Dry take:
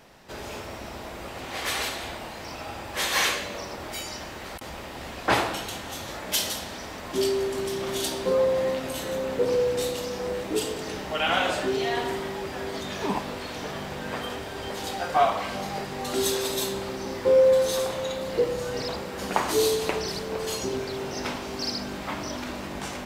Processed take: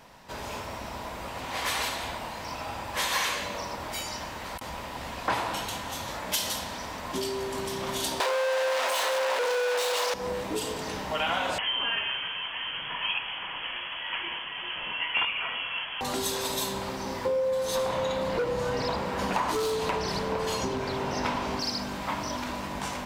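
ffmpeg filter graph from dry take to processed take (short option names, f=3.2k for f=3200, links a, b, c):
-filter_complex "[0:a]asettb=1/sr,asplit=3[a][b][c];[a]atrim=end=8.204[d];[b]atrim=start=8.2:end=10.14,asetpts=PTS-STARTPTS,afade=t=in:d=0.004:c=qsin,afade=t=out:st=1.936:d=0.004:c=qsin,asplit=2[e][f];[f]highpass=f=720:p=1,volume=35dB,asoftclip=type=tanh:threshold=-12.5dB[g];[e][g]amix=inputs=2:normalize=0,lowpass=f=4.1k:p=1,volume=-6dB,highpass=f=450:w=0.5412,highpass=f=450:w=1.3066[h];[c]atrim=start=10.136[i];[d][h]acrossfade=d=0.004:c1=hsin:c2=qsin[j];[j][i]acrossfade=d=0.004:c1=qsin:c2=hsin,asettb=1/sr,asplit=3[k][l][m];[k]atrim=end=11.584[n];[l]atrim=start=11.58:end=16.01,asetpts=PTS-STARTPTS,afade=t=in:d=0.004:c=qsin,afade=t=out:st=4.426:d=0.004:c=qsin,aemphasis=mode=production:type=bsi,aeval=exprs='(mod(4.22*val(0)+1,2)-1)/4.22':c=same,lowpass=f=3k:t=q:w=0.5098,lowpass=f=3k:t=q:w=0.6013,lowpass=f=3k:t=q:w=0.9,lowpass=f=3k:t=q:w=2.563,afreqshift=-3500[o];[m]atrim=start=16.006[p];[n][o]acrossfade=d=0.004:c1=hsin:c2=qsin[q];[q][p]acrossfade=d=0.004:c1=qsin:c2=hsin,asettb=1/sr,asplit=3[r][s][t];[r]atrim=end=17.754[u];[s]atrim=start=17.75:end=21.6,asetpts=PTS-STARTPTS,afade=t=in:d=0.004:c=qsin,afade=t=out:st=3.846:d=0.004:c=qsin,highshelf=f=5k:g=-10,acontrast=29,asoftclip=type=hard:threshold=-17.5dB[v];[t]atrim=start=21.596[w];[u][v]acrossfade=d=0.004:c1=hsin:c2=qsin[x];[x][w]acrossfade=d=0.004:c1=qsin:c2=hsin,equalizer=f=980:t=o:w=0.21:g=8.5,acompressor=threshold=-24dB:ratio=6,equalizer=f=370:t=o:w=0.45:g=-6"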